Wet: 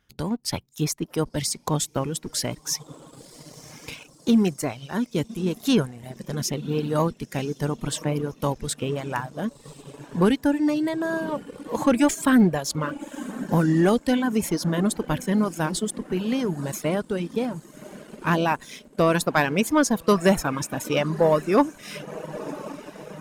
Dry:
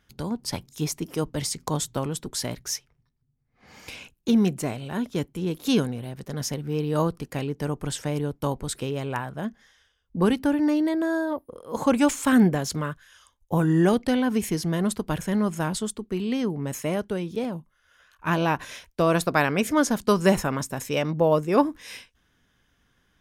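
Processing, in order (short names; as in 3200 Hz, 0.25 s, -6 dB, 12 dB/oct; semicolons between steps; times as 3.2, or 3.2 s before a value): diffused feedback echo 1.069 s, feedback 62%, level -14 dB; reverb removal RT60 1 s; sample leveller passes 1; gain -1 dB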